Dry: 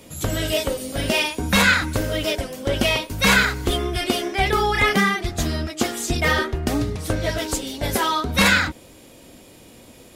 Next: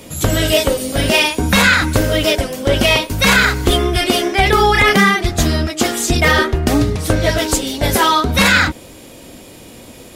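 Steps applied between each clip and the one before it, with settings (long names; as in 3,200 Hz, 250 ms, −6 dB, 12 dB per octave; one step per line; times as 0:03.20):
boost into a limiter +9.5 dB
level −1 dB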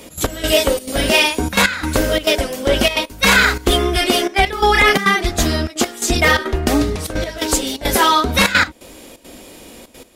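parametric band 120 Hz −11 dB 0.91 octaves
gate pattern "x.x..xxxx.xxxxxx" 172 BPM −12 dB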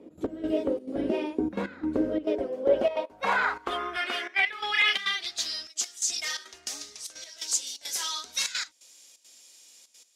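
band-pass filter sweep 330 Hz → 6,100 Hz, 0:02.20–0:05.75
level −3.5 dB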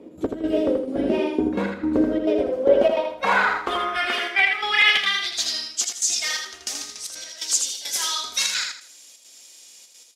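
repeating echo 81 ms, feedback 29%, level −5 dB
level +5.5 dB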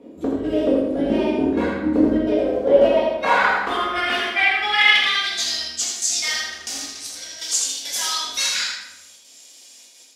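rectangular room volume 280 cubic metres, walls mixed, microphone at 1.8 metres
level −3 dB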